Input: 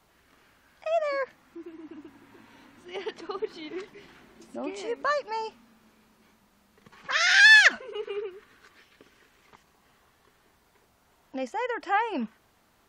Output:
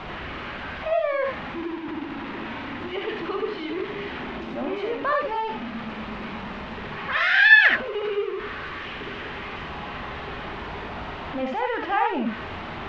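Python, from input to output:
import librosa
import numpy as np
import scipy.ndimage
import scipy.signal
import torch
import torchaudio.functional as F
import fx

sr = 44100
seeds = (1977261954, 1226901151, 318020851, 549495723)

y = x + 0.5 * 10.0 ** (-28.0 / 20.0) * np.sign(x)
y = scipy.signal.sosfilt(scipy.signal.butter(4, 3100.0, 'lowpass', fs=sr, output='sos'), y)
y = fx.rev_gated(y, sr, seeds[0], gate_ms=100, shape='rising', drr_db=2.0)
y = y * librosa.db_to_amplitude(-1.0)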